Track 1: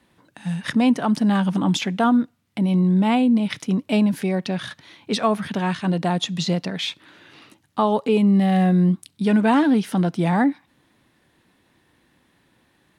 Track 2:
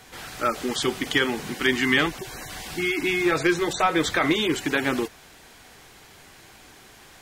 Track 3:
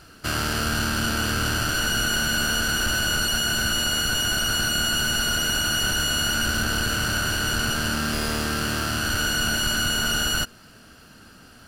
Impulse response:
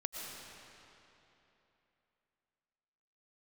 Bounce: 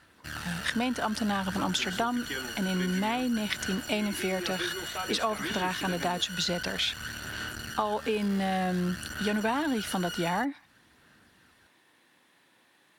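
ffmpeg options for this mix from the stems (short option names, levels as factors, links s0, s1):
-filter_complex "[0:a]highpass=f=650:p=1,volume=1.12[s0];[1:a]adelay=1150,volume=0.178[s1];[2:a]equalizer=f=1800:w=4.5:g=13,aphaser=in_gain=1:out_gain=1:delay=2.1:decay=0.5:speed=0.54:type=sinusoidal,aeval=exprs='0.501*(cos(1*acos(clip(val(0)/0.501,-1,1)))-cos(1*PI/2))+0.0794*(cos(4*acos(clip(val(0)/0.501,-1,1)))-cos(4*PI/2))+0.0316*(cos(8*acos(clip(val(0)/0.501,-1,1)))-cos(8*PI/2))':c=same,volume=0.106[s2];[s0][s1][s2]amix=inputs=3:normalize=0,highpass=54,acompressor=threshold=0.0562:ratio=6"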